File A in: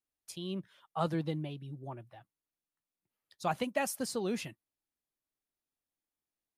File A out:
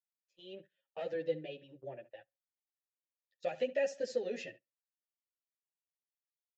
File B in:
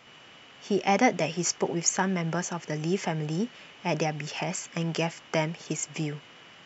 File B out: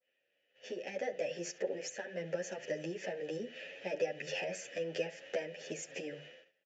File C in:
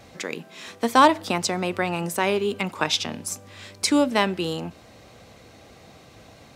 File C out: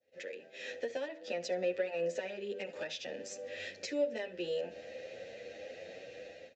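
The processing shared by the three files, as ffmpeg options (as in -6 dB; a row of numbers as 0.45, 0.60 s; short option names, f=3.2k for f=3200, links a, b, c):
-filter_complex "[0:a]acompressor=threshold=-31dB:ratio=16,aresample=16000,asoftclip=type=tanh:threshold=-26.5dB,aresample=44100,adynamicequalizer=threshold=0.00158:dfrequency=2600:dqfactor=1.2:tfrequency=2600:tqfactor=1.2:attack=5:release=100:ratio=0.375:range=3:mode=cutabove:tftype=bell,asplit=3[a][b][c];[a]bandpass=f=530:t=q:w=8,volume=0dB[d];[b]bandpass=f=1.84k:t=q:w=8,volume=-6dB[e];[c]bandpass=f=2.48k:t=q:w=8,volume=-9dB[f];[d][e][f]amix=inputs=3:normalize=0,dynaudnorm=f=250:g=5:m=9.5dB,lowshelf=f=99:g=9.5,bandreject=f=50:t=h:w=6,bandreject=f=100:t=h:w=6,bandreject=f=150:t=h:w=6,crystalizer=i=2.5:c=0,asplit=2[g][h];[h]adelay=69,lowpass=f=2.6k:p=1,volume=-15.5dB,asplit=2[i][j];[j]adelay=69,lowpass=f=2.6k:p=1,volume=0.29,asplit=2[k][l];[l]adelay=69,lowpass=f=2.6k:p=1,volume=0.29[m];[g][i][k][m]amix=inputs=4:normalize=0,agate=range=-21dB:threshold=-55dB:ratio=16:detection=peak,asplit=2[n][o];[o]adelay=9.4,afreqshift=1.4[p];[n][p]amix=inputs=2:normalize=1,volume=5dB"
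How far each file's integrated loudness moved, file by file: -2.0, -11.0, -16.0 LU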